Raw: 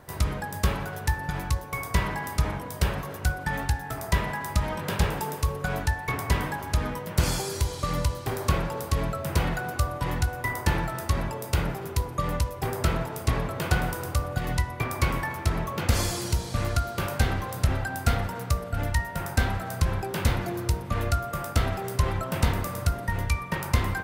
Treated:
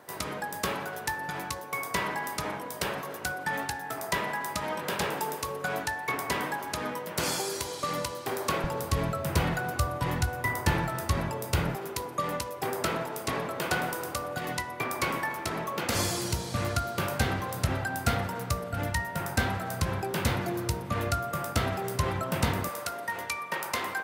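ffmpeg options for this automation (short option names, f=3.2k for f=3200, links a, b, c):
-af "asetnsamples=n=441:p=0,asendcmd='8.64 highpass f 78;11.75 highpass f 240;15.95 highpass f 110;22.69 highpass f 430',highpass=260"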